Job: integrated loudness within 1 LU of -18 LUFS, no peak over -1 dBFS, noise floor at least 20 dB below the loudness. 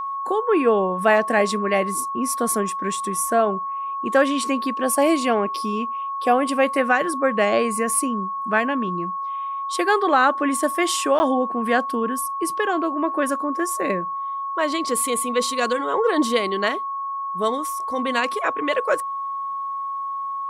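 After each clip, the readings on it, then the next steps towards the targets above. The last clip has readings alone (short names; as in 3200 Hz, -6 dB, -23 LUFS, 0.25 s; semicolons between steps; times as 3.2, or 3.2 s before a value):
dropouts 1; longest dropout 10 ms; steady tone 1100 Hz; tone level -25 dBFS; loudness -22.0 LUFS; peak -5.0 dBFS; loudness target -18.0 LUFS
-> interpolate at 11.19, 10 ms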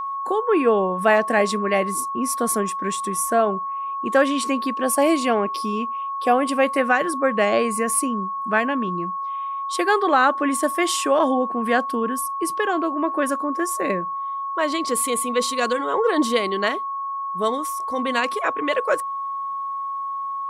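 dropouts 0; steady tone 1100 Hz; tone level -25 dBFS
-> notch 1100 Hz, Q 30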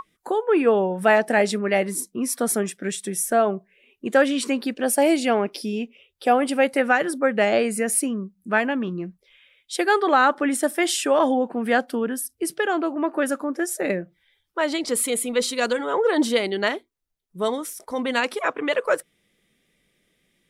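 steady tone none; loudness -22.5 LUFS; peak -6.0 dBFS; loudness target -18.0 LUFS
-> gain +4.5 dB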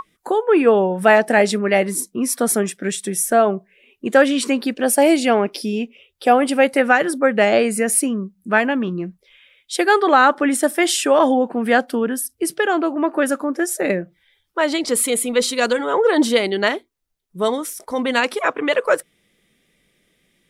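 loudness -18.0 LUFS; peak -1.5 dBFS; noise floor -65 dBFS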